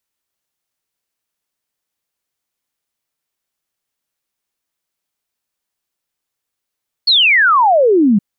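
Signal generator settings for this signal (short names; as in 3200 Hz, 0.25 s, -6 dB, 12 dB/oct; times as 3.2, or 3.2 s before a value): log sweep 4500 Hz -> 190 Hz 1.12 s -7.5 dBFS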